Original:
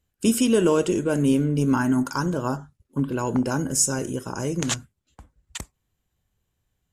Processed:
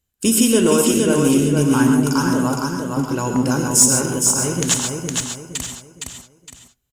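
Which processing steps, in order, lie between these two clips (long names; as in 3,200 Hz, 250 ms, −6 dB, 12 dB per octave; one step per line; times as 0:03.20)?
high-shelf EQ 3,900 Hz +9 dB
leveller curve on the samples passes 1
on a send: repeating echo 463 ms, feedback 35%, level −4 dB
on the sum: reverb whose tail is shaped and stops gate 160 ms rising, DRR 5.5 dB
level −1.5 dB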